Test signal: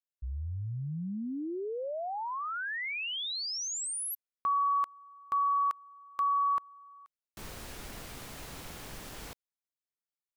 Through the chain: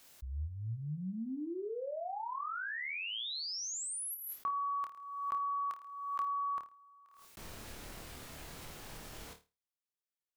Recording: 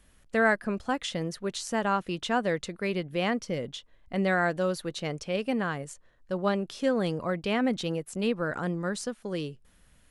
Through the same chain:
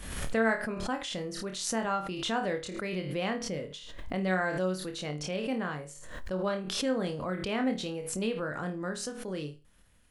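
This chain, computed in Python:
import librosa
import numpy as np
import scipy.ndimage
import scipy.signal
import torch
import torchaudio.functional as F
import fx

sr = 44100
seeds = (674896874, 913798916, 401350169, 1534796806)

y = fx.room_flutter(x, sr, wall_m=4.6, rt60_s=0.27)
y = fx.pre_swell(y, sr, db_per_s=48.0)
y = y * 10.0 ** (-5.5 / 20.0)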